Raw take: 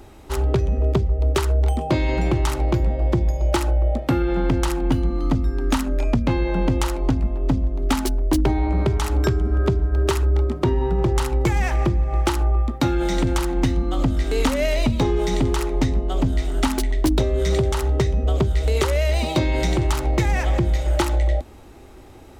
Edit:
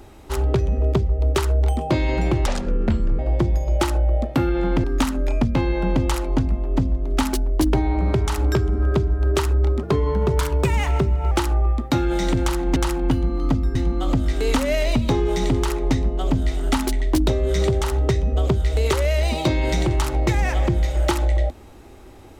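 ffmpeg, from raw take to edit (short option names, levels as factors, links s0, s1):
-filter_complex "[0:a]asplit=8[s0][s1][s2][s3][s4][s5][s6][s7];[s0]atrim=end=2.464[s8];[s1]atrim=start=2.46:end=2.92,asetpts=PTS-STARTPTS,asetrate=27783,aresample=44100[s9];[s2]atrim=start=2.916:end=4.572[s10];[s3]atrim=start=5.558:end=10.554[s11];[s4]atrim=start=10.55:end=12.21,asetpts=PTS-STARTPTS,asetrate=49392,aresample=44100,atrim=end_sample=65362,asetpts=PTS-STARTPTS[s12];[s5]atrim=start=12.206:end=13.662[s13];[s6]atrim=start=4.568:end=5.562[s14];[s7]atrim=start=13.658[s15];[s8][s9]acrossfade=d=0.004:c1=hsin:c2=hsin[s16];[s16][s10]acrossfade=d=0.004:c1=hsin:c2=hsin[s17];[s17][s11]acrossfade=d=0.004:c1=hsin:c2=hsin[s18];[s18][s12]acrossfade=d=0.004:c1=hsin:c2=hsin[s19];[s19][s13]acrossfade=d=0.004:c1=hsin:c2=hsin[s20];[s20][s14]acrossfade=d=0.004:c1=hsin:c2=hsin[s21];[s21][s15]acrossfade=d=0.004:c1=hsin:c2=hsin"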